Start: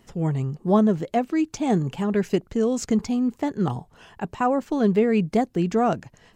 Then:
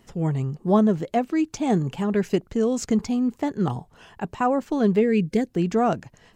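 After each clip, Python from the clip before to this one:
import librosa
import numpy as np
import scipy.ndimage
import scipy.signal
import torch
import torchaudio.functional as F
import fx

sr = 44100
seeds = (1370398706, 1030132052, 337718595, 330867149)

y = fx.spec_box(x, sr, start_s=5.01, length_s=0.48, low_hz=520.0, high_hz=1500.0, gain_db=-12)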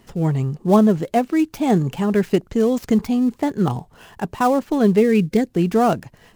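y = fx.dead_time(x, sr, dead_ms=0.069)
y = F.gain(torch.from_numpy(y), 4.5).numpy()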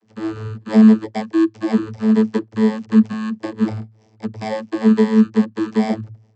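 y = fx.bit_reversed(x, sr, seeds[0], block=32)
y = fx.leveller(y, sr, passes=1)
y = fx.vocoder(y, sr, bands=32, carrier='saw', carrier_hz=109.0)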